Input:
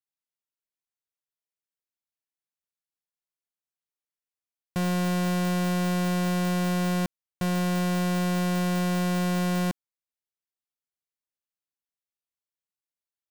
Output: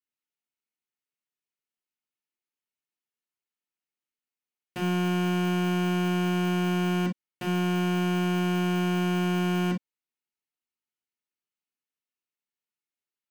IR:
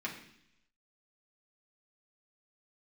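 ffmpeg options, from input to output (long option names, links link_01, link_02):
-filter_complex "[1:a]atrim=start_sample=2205,atrim=end_sample=3528,asetrate=52920,aresample=44100[link_01];[0:a][link_01]afir=irnorm=-1:irlink=0"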